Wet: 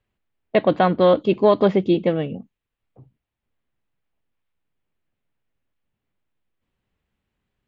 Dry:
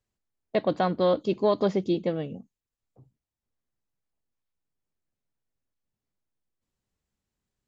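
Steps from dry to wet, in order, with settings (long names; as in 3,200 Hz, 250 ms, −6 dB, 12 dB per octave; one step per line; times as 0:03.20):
high shelf with overshoot 4,100 Hz −12 dB, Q 1.5
level +7.5 dB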